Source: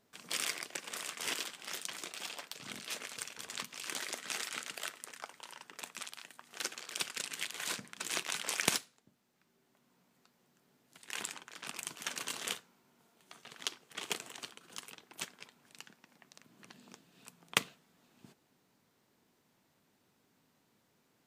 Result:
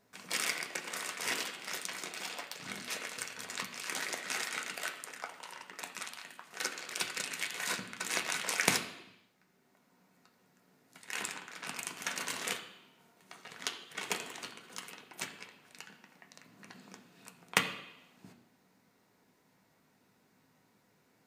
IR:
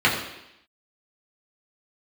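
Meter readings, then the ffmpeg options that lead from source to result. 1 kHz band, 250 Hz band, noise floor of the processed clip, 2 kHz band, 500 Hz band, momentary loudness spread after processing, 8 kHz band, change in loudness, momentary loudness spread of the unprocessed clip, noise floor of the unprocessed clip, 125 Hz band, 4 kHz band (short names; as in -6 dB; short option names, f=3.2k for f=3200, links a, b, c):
+4.5 dB, +4.0 dB, -71 dBFS, +4.5 dB, +4.0 dB, 20 LU, +1.0 dB, +2.0 dB, 20 LU, -74 dBFS, +4.0 dB, +0.5 dB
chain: -filter_complex "[0:a]asplit=2[a][b];[1:a]atrim=start_sample=2205[c];[b][c]afir=irnorm=-1:irlink=0,volume=-21dB[d];[a][d]amix=inputs=2:normalize=0,volume=1.5dB"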